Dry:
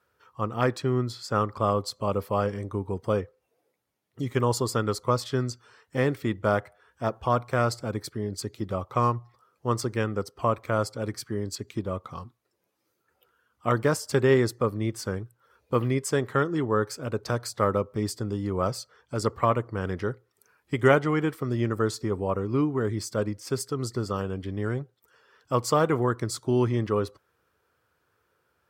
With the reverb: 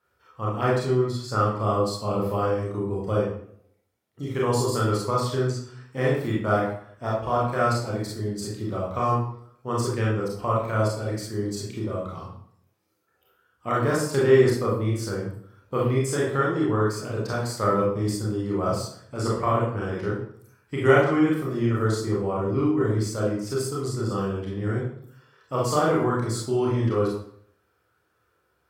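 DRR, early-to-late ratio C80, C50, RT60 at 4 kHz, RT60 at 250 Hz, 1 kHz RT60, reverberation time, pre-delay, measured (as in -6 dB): -5.5 dB, 6.5 dB, 1.5 dB, 0.50 s, 0.70 s, 0.60 s, 0.60 s, 26 ms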